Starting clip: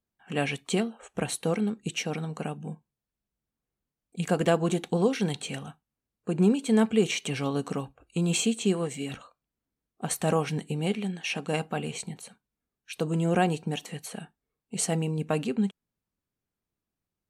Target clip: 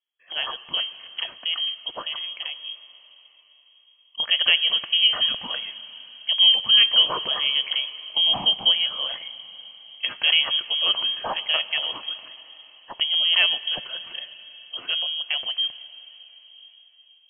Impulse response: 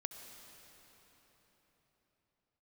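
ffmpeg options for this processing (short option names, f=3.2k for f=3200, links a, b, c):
-filter_complex "[0:a]dynaudnorm=f=450:g=17:m=6dB,asplit=2[a][b];[1:a]atrim=start_sample=2205[c];[b][c]afir=irnorm=-1:irlink=0,volume=-3.5dB[d];[a][d]amix=inputs=2:normalize=0,lowpass=f=2.9k:t=q:w=0.5098,lowpass=f=2.9k:t=q:w=0.6013,lowpass=f=2.9k:t=q:w=0.9,lowpass=f=2.9k:t=q:w=2.563,afreqshift=-3400,volume=-3.5dB"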